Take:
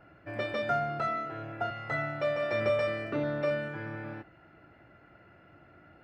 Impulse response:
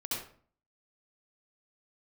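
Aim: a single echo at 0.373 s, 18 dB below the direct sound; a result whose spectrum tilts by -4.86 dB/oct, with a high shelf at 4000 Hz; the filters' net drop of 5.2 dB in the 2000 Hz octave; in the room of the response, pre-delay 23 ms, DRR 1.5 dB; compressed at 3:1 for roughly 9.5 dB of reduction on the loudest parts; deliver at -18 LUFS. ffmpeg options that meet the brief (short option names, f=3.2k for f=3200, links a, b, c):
-filter_complex "[0:a]equalizer=f=2k:t=o:g=-7.5,highshelf=f=4k:g=4.5,acompressor=threshold=-37dB:ratio=3,aecho=1:1:373:0.126,asplit=2[a][b];[1:a]atrim=start_sample=2205,adelay=23[c];[b][c]afir=irnorm=-1:irlink=0,volume=-4.5dB[d];[a][d]amix=inputs=2:normalize=0,volume=19.5dB"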